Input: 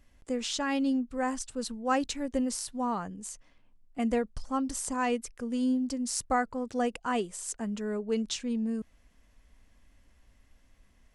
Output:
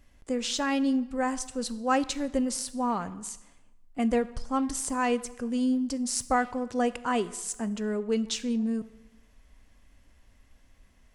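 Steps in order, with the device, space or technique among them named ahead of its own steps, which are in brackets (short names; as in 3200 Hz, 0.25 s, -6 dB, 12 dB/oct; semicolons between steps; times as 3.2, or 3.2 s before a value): saturated reverb return (on a send at -11.5 dB: reverb RT60 0.95 s, pre-delay 5 ms + soft clip -31 dBFS, distortion -11 dB); on the sum: gain +2.5 dB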